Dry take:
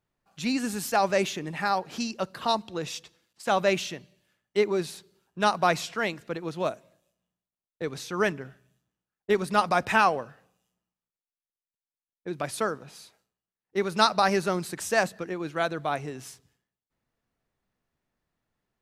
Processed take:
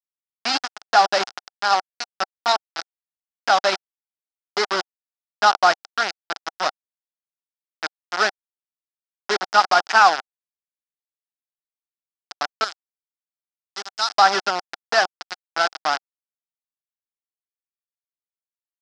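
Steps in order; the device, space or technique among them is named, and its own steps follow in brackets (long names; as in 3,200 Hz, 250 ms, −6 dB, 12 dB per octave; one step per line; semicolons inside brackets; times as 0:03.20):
hand-held game console (bit reduction 4 bits; loudspeaker in its box 430–5,600 Hz, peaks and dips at 490 Hz −7 dB, 770 Hz +8 dB, 1,400 Hz +8 dB, 2,400 Hz −4 dB, 5,100 Hz +10 dB)
0:12.64–0:14.17: first-order pre-emphasis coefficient 0.8
level +3 dB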